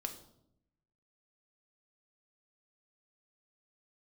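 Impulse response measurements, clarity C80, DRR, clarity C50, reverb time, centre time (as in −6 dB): 13.5 dB, 5.0 dB, 10.5 dB, 0.75 s, 13 ms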